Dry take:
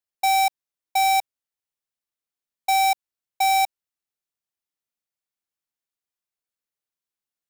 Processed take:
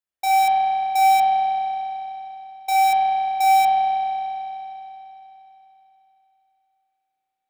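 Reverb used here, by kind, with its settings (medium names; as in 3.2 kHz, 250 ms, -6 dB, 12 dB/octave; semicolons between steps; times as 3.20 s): spring tank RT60 3.4 s, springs 31 ms, chirp 65 ms, DRR -9 dB; trim -4 dB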